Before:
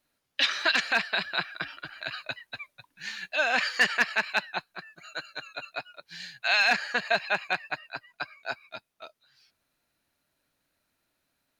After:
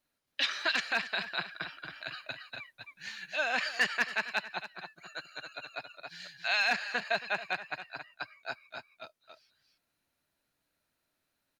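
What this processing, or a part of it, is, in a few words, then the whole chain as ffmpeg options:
ducked delay: -filter_complex "[0:a]asplit=3[link_01][link_02][link_03];[link_02]adelay=273,volume=-4dB[link_04];[link_03]apad=whole_len=523357[link_05];[link_04][link_05]sidechaincompress=threshold=-30dB:ratio=8:attack=9:release=744[link_06];[link_01][link_06]amix=inputs=2:normalize=0,volume=-5.5dB"

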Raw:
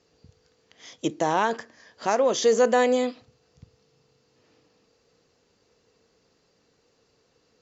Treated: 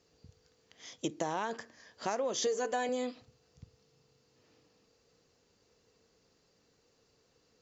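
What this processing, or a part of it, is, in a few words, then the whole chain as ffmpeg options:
ASMR close-microphone chain: -filter_complex "[0:a]asettb=1/sr,asplit=3[link_01][link_02][link_03];[link_01]atrim=end=2.464[link_04];[link_02]atrim=start=2.46:end=2.89,asetpts=PTS-STARTPTS,afade=type=in:duration=0.004:curve=qsin,afade=type=out:start_time=0.426:duration=0.004:curve=qsin,aecho=1:1:6.8:0.78,atrim=end_sample=18963[link_05];[link_03]atrim=start=2.886[link_06];[link_04][link_05]acrossfade=duration=0.004:curve1=hsin:curve2=qsin[link_07];[link_07][link_06]acrossfade=duration=0.004:curve1=qsin:curve2=hsin,lowshelf=frequency=130:gain=4,acompressor=threshold=-25dB:ratio=5,highshelf=frequency=6500:gain=6.5,volume=-5.5dB"

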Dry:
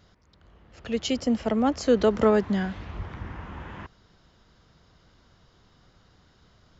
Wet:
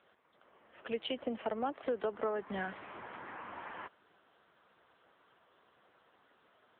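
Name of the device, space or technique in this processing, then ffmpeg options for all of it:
voicemail: -af "highpass=440,lowpass=3000,acompressor=threshold=-33dB:ratio=6,volume=1.5dB" -ar 8000 -c:a libopencore_amrnb -b:a 6700

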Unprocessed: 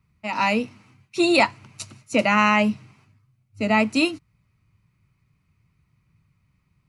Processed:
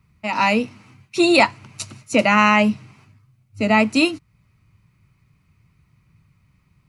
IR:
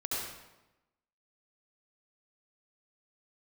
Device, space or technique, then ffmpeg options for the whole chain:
parallel compression: -filter_complex "[0:a]asplit=2[link_01][link_02];[link_02]acompressor=threshold=-38dB:ratio=6,volume=-6dB[link_03];[link_01][link_03]amix=inputs=2:normalize=0,volume=3dB"

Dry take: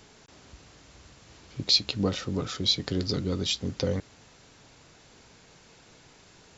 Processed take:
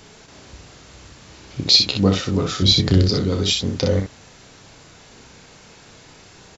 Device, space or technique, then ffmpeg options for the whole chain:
slapback doubling: -filter_complex "[0:a]asettb=1/sr,asplit=3[link_01][link_02][link_03];[link_01]atrim=end=2.624[link_04];[link_02]atrim=start=2.62:end=3.03,asetpts=PTS-STARTPTS,afade=type=in:duration=0.004:curve=qsin,afade=type=out:start_time=0.406:duration=0.004:curve=qsin,lowshelf=frequency=230:gain=10.5[link_05];[link_03]atrim=start=3.026[link_06];[link_04][link_05]acrossfade=duration=0.004:curve1=hsin:curve2=qsin[link_07];[link_07][link_06]acrossfade=duration=0.004:curve1=qsin:curve2=hsin,asplit=3[link_08][link_09][link_10];[link_09]adelay=31,volume=-8.5dB[link_11];[link_10]adelay=62,volume=-5.5dB[link_12];[link_08][link_11][link_12]amix=inputs=3:normalize=0,volume=7.5dB"

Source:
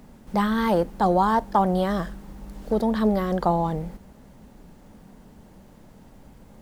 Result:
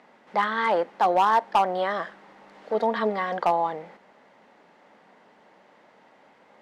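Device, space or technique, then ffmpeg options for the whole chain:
megaphone: -filter_complex "[0:a]asettb=1/sr,asplit=3[link_01][link_02][link_03];[link_01]atrim=end=2.744[link_04];[link_02]atrim=start=2.74:end=3.38,asetpts=PTS-STARTPTS,afade=type=in:duration=0.004:curve=qsin,afade=type=out:start_time=0.636:duration=0.004:curve=qsin,aecho=1:1:4.3:0.68,atrim=end_sample=28224[link_05];[link_03]atrim=start=3.376[link_06];[link_04][link_05]acrossfade=duration=0.004:curve1=hsin:curve2=qsin[link_07];[link_07][link_06]acrossfade=duration=0.004:curve1=qsin:curve2=hsin,highpass=590,lowpass=3200,equalizer=frequency=2000:width_type=o:width=0.28:gain=5,asoftclip=type=hard:threshold=-16.5dB,volume=3dB"

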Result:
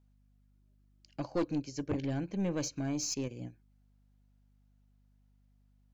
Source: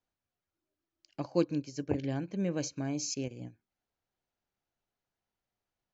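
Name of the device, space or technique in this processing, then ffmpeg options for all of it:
valve amplifier with mains hum: -af "aeval=exprs='(tanh(20*val(0)+0.15)-tanh(0.15))/20':channel_layout=same,aeval=exprs='val(0)+0.000447*(sin(2*PI*50*n/s)+sin(2*PI*2*50*n/s)/2+sin(2*PI*3*50*n/s)/3+sin(2*PI*4*50*n/s)/4+sin(2*PI*5*50*n/s)/5)':channel_layout=same,volume=1.5dB"

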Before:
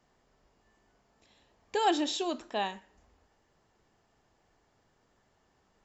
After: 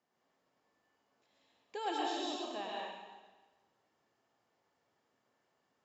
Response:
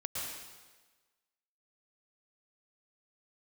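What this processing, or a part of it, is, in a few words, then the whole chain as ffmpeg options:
supermarket ceiling speaker: -filter_complex "[0:a]highpass=210,lowpass=6800[link_01];[1:a]atrim=start_sample=2205[link_02];[link_01][link_02]afir=irnorm=-1:irlink=0,volume=-9dB"

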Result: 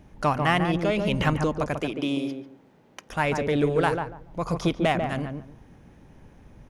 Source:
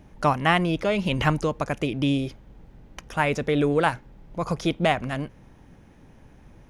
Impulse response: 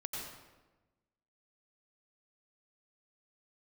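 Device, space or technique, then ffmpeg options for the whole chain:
parallel distortion: -filter_complex "[0:a]asplit=2[link_01][link_02];[link_02]asoftclip=type=hard:threshold=-20dB,volume=-8dB[link_03];[link_01][link_03]amix=inputs=2:normalize=0,asettb=1/sr,asplit=3[link_04][link_05][link_06];[link_04]atrim=end=1.794[link_07];[link_05]atrim=start=1.79:end=3.1,asetpts=PTS-STARTPTS,afade=type=in:duration=0.004:curve=qsin,afade=type=out:start_time=1.306:duration=0.004:curve=qsin,highpass=270[link_08];[link_06]atrim=start=3.096[link_09];[link_07][link_08]acrossfade=duration=0.004:curve1=hsin:curve2=qsin[link_10];[link_10][link_09]acrossfade=duration=0.004:curve1=qsin:curve2=hsin,asplit=2[link_11][link_12];[link_12]adelay=143,lowpass=frequency=950:poles=1,volume=-3.5dB,asplit=2[link_13][link_14];[link_14]adelay=143,lowpass=frequency=950:poles=1,volume=0.24,asplit=2[link_15][link_16];[link_16]adelay=143,lowpass=frequency=950:poles=1,volume=0.24[link_17];[link_11][link_13][link_15][link_17]amix=inputs=4:normalize=0,volume=-4dB"

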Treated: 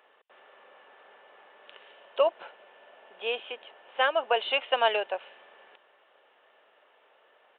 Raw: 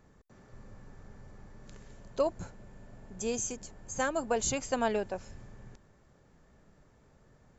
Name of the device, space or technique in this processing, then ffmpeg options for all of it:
musical greeting card: -af "aresample=8000,aresample=44100,highpass=frequency=520:width=0.5412,highpass=frequency=520:width=1.3066,equalizer=frequency=2900:width_type=o:width=0.35:gain=11.5,volume=7dB"

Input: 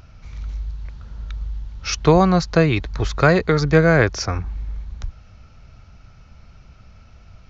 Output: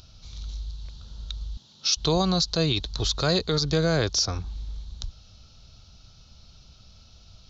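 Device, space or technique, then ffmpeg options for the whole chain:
over-bright horn tweeter: -filter_complex "[0:a]asettb=1/sr,asplit=3[link_01][link_02][link_03];[link_01]atrim=end=1.574[link_04];[link_02]atrim=start=1.57:end=1.97,asetpts=PTS-STARTPTS,afade=type=in:duration=0.004:curve=qsin,afade=type=out:start_time=0.396:duration=0.004:curve=qsin,highpass=frequency=160:width=0.5412,highpass=frequency=160:width=1.3066[link_05];[link_03]atrim=start=1.966[link_06];[link_04][link_05]acrossfade=duration=0.004:curve1=hsin:curve2=qsin[link_07];[link_07][link_06]acrossfade=duration=0.004:curve1=qsin:curve2=hsin,highshelf=frequency=2800:width_type=q:width=3:gain=10.5,alimiter=limit=-6.5dB:level=0:latency=1:release=57,volume=-6.5dB"

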